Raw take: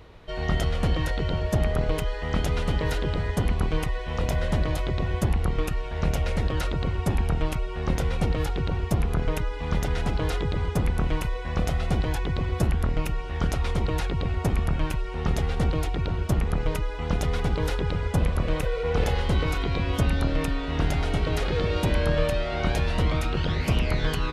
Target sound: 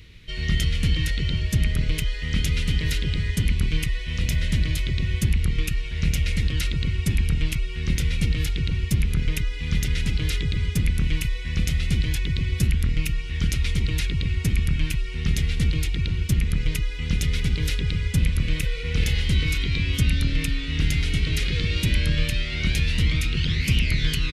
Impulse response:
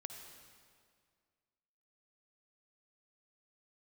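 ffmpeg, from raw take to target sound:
-af "firequalizer=gain_entry='entry(140,0);entry(720,-25);entry(2100,4)':delay=0.05:min_phase=1,volume=1.41"

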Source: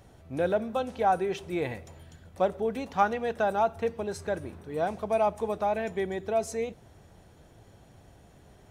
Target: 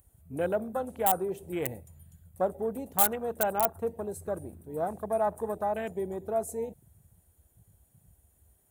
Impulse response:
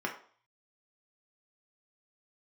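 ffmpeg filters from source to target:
-filter_complex "[0:a]afwtdn=0.0141,highshelf=f=6400:g=7,acrossover=split=1100[s0][s1];[s1]aeval=exprs='(mod(23.7*val(0)+1,2)-1)/23.7':c=same[s2];[s0][s2]amix=inputs=2:normalize=0,aexciter=amount=7.9:drive=7:freq=7800,volume=0.75"

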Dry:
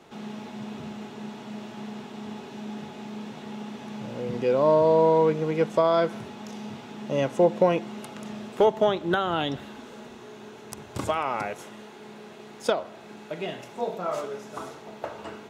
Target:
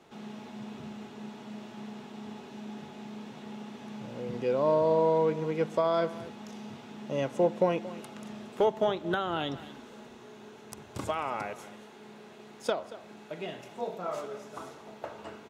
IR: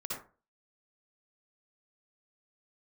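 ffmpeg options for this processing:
-af "aecho=1:1:229:0.15,volume=0.531"

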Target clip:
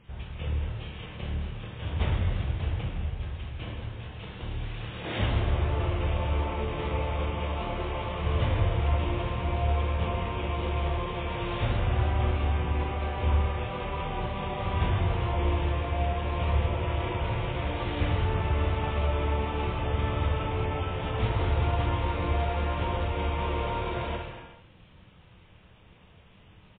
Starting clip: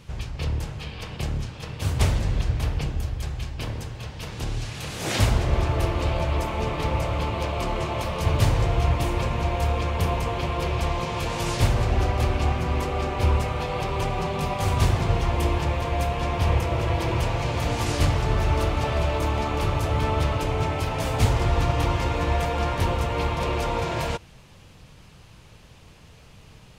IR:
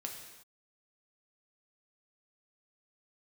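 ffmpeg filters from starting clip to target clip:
-filter_complex "[0:a]aecho=1:1:247:0.0668[s0];[1:a]atrim=start_sample=2205,afade=t=out:st=0.39:d=0.01,atrim=end_sample=17640,asetrate=33075,aresample=44100[s1];[s0][s1]afir=irnorm=-1:irlink=0,volume=0.531" -ar 8000 -c:a libmp3lame -b:a 16k

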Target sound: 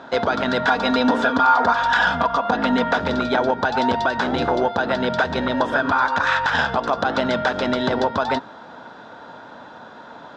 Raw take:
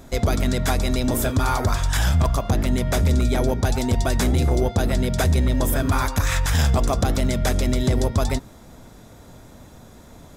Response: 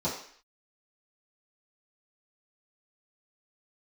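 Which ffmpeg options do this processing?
-filter_complex "[0:a]highpass=330,equalizer=f=370:t=q:w=4:g=-5,equalizer=f=910:t=q:w=4:g=8,equalizer=f=1500:t=q:w=4:g=10,equalizer=f=2200:t=q:w=4:g=-8,lowpass=f=3900:w=0.5412,lowpass=f=3900:w=1.3066,alimiter=limit=0.15:level=0:latency=1:release=139,asettb=1/sr,asplit=3[s0][s1][s2];[s0]atrim=end=0.664[s3];[s1]atrim=start=0.66:end=2.98,asetpts=PTS-STARTPTS,afade=t=in:d=0.004:c=qsin,afade=t=out:st=2.316:d=0.004:c=qsin,aecho=1:1:4.2:0.62,atrim=end_sample=102312[s4];[s2]atrim=start=2.976[s5];[s3][s4]acrossfade=d=0.004:c1=hsin:c2=qsin[s6];[s6][s5]acrossfade=d=0.004:c1=qsin:c2=hsin,volume=2.51"

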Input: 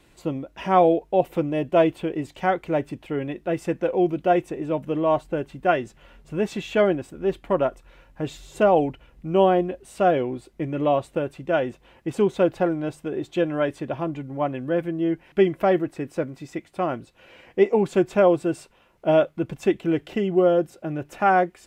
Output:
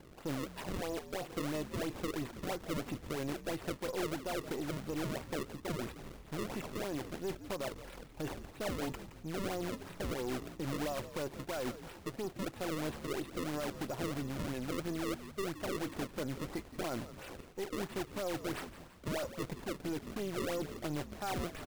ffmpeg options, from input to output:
-filter_complex "[0:a]aeval=exprs='if(lt(val(0),0),0.447*val(0),val(0))':c=same,lowshelf=f=190:g=-6.5,areverse,acompressor=threshold=0.0224:ratio=16,areverse,alimiter=level_in=3.76:limit=0.0631:level=0:latency=1:release=63,volume=0.266,acrusher=samples=32:mix=1:aa=0.000001:lfo=1:lforange=51.2:lforate=3,asplit=6[s0][s1][s2][s3][s4][s5];[s1]adelay=170,afreqshift=-87,volume=0.224[s6];[s2]adelay=340,afreqshift=-174,volume=0.107[s7];[s3]adelay=510,afreqshift=-261,volume=0.0513[s8];[s4]adelay=680,afreqshift=-348,volume=0.0248[s9];[s5]adelay=850,afreqshift=-435,volume=0.0119[s10];[s0][s6][s7][s8][s9][s10]amix=inputs=6:normalize=0,volume=1.88"

